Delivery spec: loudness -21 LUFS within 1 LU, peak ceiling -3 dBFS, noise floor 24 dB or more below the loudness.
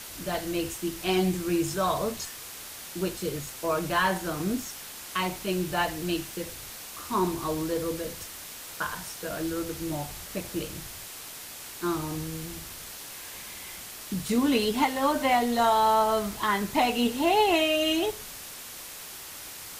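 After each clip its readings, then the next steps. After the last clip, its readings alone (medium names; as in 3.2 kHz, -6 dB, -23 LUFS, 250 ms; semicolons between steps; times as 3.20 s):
noise floor -42 dBFS; noise floor target -53 dBFS; loudness -28.5 LUFS; peak level -11.5 dBFS; loudness target -21.0 LUFS
-> noise reduction 11 dB, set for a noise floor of -42 dBFS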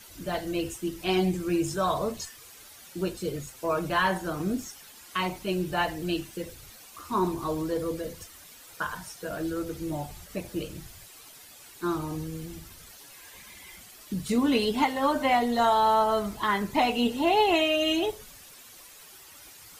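noise floor -50 dBFS; noise floor target -52 dBFS
-> noise reduction 6 dB, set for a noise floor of -50 dBFS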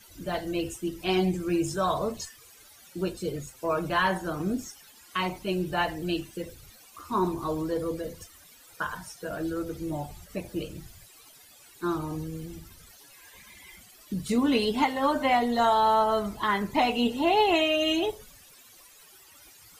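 noise floor -54 dBFS; loudness -28.0 LUFS; peak level -11.5 dBFS; loudness target -21.0 LUFS
-> trim +7 dB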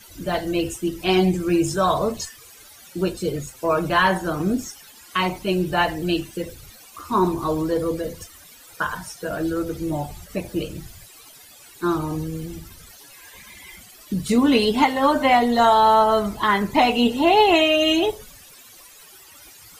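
loudness -21.0 LUFS; peak level -4.5 dBFS; noise floor -47 dBFS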